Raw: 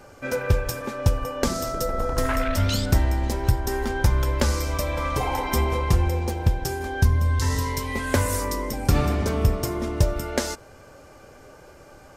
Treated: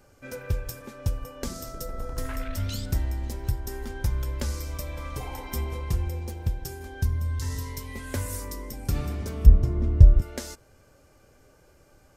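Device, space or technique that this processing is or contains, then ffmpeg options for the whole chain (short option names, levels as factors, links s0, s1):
smiley-face EQ: -filter_complex "[0:a]asettb=1/sr,asplit=3[s0][s1][s2];[s0]atrim=end=9.464[s3];[s1]atrim=start=9.46:end=10.22,asetpts=PTS-STARTPTS,afade=t=in:d=0.004:c=qsin,afade=t=out:st=0.756:d=0.004:c=qsin,aemphasis=mode=reproduction:type=riaa[s4];[s2]atrim=start=10.216[s5];[s3][s4]acrossfade=d=0.004:c1=hsin:c2=qsin[s6];[s6][s5]acrossfade=d=0.004:c1=qsin:c2=hsin,lowshelf=f=120:g=5.5,equalizer=f=880:t=o:w=1.6:g=-4,highshelf=f=8600:g=7,volume=0.299"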